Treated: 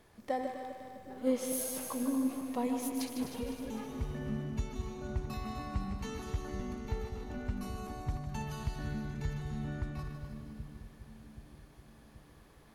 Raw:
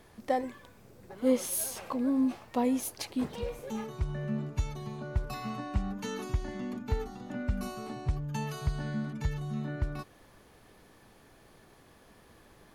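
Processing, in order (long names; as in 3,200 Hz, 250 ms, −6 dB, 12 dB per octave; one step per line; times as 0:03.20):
feedback delay that plays each chunk backwards 127 ms, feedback 72%, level −8.5 dB
echo with a time of its own for lows and highs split 360 Hz, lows 779 ms, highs 153 ms, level −8 dB
level −5.5 dB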